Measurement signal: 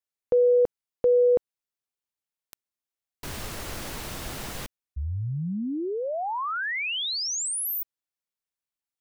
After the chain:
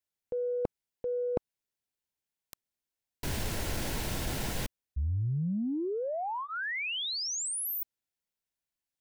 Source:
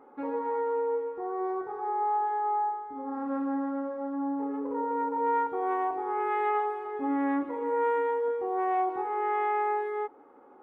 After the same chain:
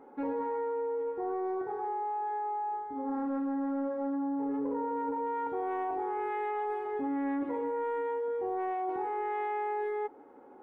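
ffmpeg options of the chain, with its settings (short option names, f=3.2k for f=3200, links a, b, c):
-af "areverse,acompressor=threshold=-35dB:ratio=8:attack=16:release=25:knee=1:detection=peak,areverse,lowshelf=f=290:g=5,bandreject=f=1.2k:w=5.9"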